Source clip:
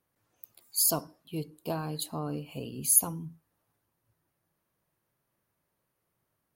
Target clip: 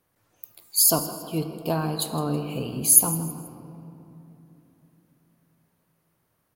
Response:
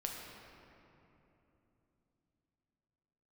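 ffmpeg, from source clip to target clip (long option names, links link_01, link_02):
-filter_complex "[0:a]asplit=4[link_01][link_02][link_03][link_04];[link_02]adelay=161,afreqshift=57,volume=-16.5dB[link_05];[link_03]adelay=322,afreqshift=114,volume=-24.9dB[link_06];[link_04]adelay=483,afreqshift=171,volume=-33.3dB[link_07];[link_01][link_05][link_06][link_07]amix=inputs=4:normalize=0,asplit=2[link_08][link_09];[1:a]atrim=start_sample=2205[link_10];[link_09][link_10]afir=irnorm=-1:irlink=0,volume=-3dB[link_11];[link_08][link_11]amix=inputs=2:normalize=0,volume=3.5dB"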